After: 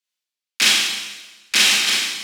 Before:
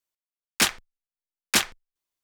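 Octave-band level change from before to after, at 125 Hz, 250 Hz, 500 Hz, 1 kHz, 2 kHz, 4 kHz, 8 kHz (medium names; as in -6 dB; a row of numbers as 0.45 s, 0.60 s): no reading, -0.5 dB, +1.0 dB, +2.5 dB, +10.0 dB, +12.5 dB, +8.0 dB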